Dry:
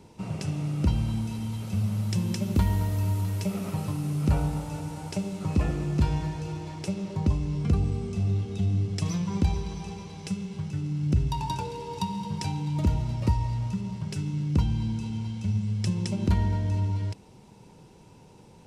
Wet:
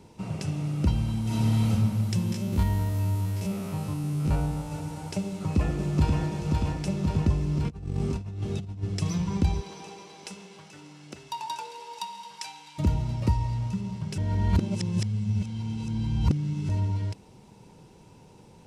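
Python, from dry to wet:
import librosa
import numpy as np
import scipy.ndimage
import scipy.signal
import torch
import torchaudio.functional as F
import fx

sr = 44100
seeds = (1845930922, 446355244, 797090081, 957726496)

y = fx.reverb_throw(x, sr, start_s=1.22, length_s=0.48, rt60_s=1.5, drr_db=-8.0)
y = fx.spec_steps(y, sr, hold_ms=50, at=(2.32, 4.72))
y = fx.echo_throw(y, sr, start_s=5.25, length_s=0.94, ms=530, feedback_pct=75, wet_db=-3.0)
y = fx.over_compress(y, sr, threshold_db=-29.0, ratio=-0.5, at=(7.68, 8.82), fade=0.02)
y = fx.highpass(y, sr, hz=fx.line((9.6, 320.0), (12.78, 1200.0)), slope=12, at=(9.6, 12.78), fade=0.02)
y = fx.edit(y, sr, fx.reverse_span(start_s=14.18, length_s=2.51), tone=tone)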